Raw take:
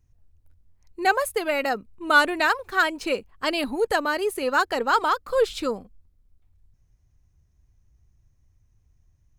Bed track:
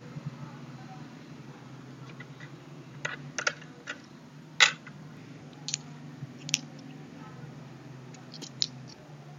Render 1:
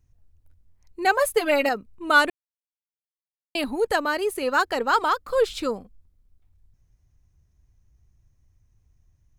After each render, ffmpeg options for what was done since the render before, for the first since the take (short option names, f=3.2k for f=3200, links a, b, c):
-filter_complex "[0:a]asettb=1/sr,asplit=3[a][b][c];[a]atrim=end=1.184[d];[b]atrim=start=1.18:end=1.69,asetpts=PTS-STARTPTS,afade=t=in:d=0.004:c=qsin,afade=t=out:st=0.506:d=0.004:c=qsin,aecho=1:1:6.9:0.99,atrim=end_sample=22491[e];[c]atrim=start=1.686[f];[d][e]acrossfade=d=0.004:c1=hsin:c2=qsin[g];[g][f]acrossfade=d=0.004:c1=qsin:c2=hsin,asplit=3[h][i][j];[h]atrim=end=2.3,asetpts=PTS-STARTPTS,afade=t=out:st=2.296:d=0.004:c=hsin[k];[i]atrim=start=2.3:end=3.55,asetpts=PTS-STARTPTS,volume=0[l];[j]atrim=start=3.55,asetpts=PTS-STARTPTS,afade=t=in:d=0.004:c=hsin[m];[k][l][m]concat=n=3:v=0:a=1"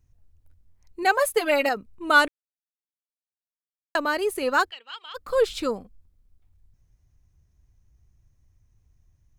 -filter_complex "[0:a]asettb=1/sr,asplit=3[a][b][c];[a]atrim=end=1.034[d];[b]atrim=start=1.03:end=1.77,asetpts=PTS-STARTPTS,afade=t=in:d=0.004:c=qsin,afade=t=out:st=0.736:d=0.004:c=qsin,lowshelf=f=180:g=-8.5[e];[c]atrim=start=1.766[f];[d][e]acrossfade=d=0.004:c1=hsin:c2=qsin[g];[g][f]acrossfade=d=0.004:c1=qsin:c2=hsin,asplit=3[h][i][j];[h]afade=t=out:st=4.69:d=0.02[k];[i]bandpass=f=3k:t=q:w=6.1,afade=t=in:st=4.69:d=0.02,afade=t=out:st=5.14:d=0.02[l];[j]afade=t=in:st=5.14:d=0.02[m];[k][l][m]amix=inputs=3:normalize=0,asplit=3[n][o][p];[n]atrim=end=2.28,asetpts=PTS-STARTPTS,afade=t=out:st=2.276:d=0.004:c=hsin[q];[o]atrim=start=2.28:end=3.95,asetpts=PTS-STARTPTS,volume=0[r];[p]atrim=start=3.95,asetpts=PTS-STARTPTS,afade=t=in:d=0.004:c=hsin[s];[q][r][s]concat=n=3:v=0:a=1"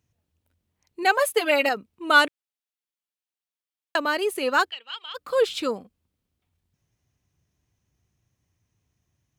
-af "highpass=150,equalizer=f=3k:w=1.7:g=5"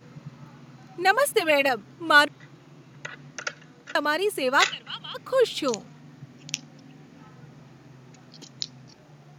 -filter_complex "[1:a]volume=-3dB[a];[0:a][a]amix=inputs=2:normalize=0"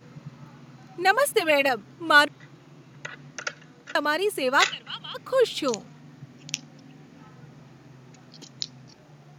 -af anull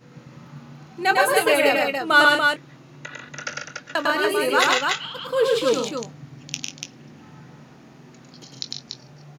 -filter_complex "[0:a]asplit=2[a][b];[b]adelay=22,volume=-11.5dB[c];[a][c]amix=inputs=2:normalize=0,asplit=2[d][e];[e]aecho=0:1:102|142.9|288.6:0.794|0.501|0.631[f];[d][f]amix=inputs=2:normalize=0"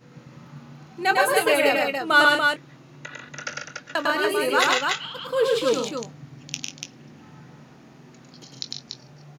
-af "volume=-1.5dB"